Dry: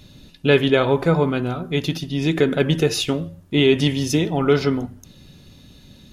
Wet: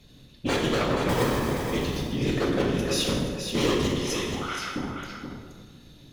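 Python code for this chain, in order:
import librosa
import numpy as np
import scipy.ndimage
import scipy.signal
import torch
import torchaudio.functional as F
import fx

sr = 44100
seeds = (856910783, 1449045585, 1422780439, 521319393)

y = fx.sample_hold(x, sr, seeds[0], rate_hz=1400.0, jitter_pct=0, at=(1.09, 1.67))
y = fx.over_compress(y, sr, threshold_db=-20.0, ratio=-0.5, at=(2.63, 3.04))
y = fx.highpass(y, sr, hz=920.0, slope=24, at=(3.95, 4.76))
y = 10.0 ** (-13.0 / 20.0) * (np.abs((y / 10.0 ** (-13.0 / 20.0) + 3.0) % 4.0 - 2.0) - 1.0)
y = fx.whisperise(y, sr, seeds[1])
y = y + 10.0 ** (-7.0 / 20.0) * np.pad(y, (int(476 * sr / 1000.0), 0))[:len(y)]
y = fx.rev_plate(y, sr, seeds[2], rt60_s=1.5, hf_ratio=0.7, predelay_ms=0, drr_db=-1.0)
y = fx.end_taper(y, sr, db_per_s=100.0)
y = y * 10.0 ** (-8.0 / 20.0)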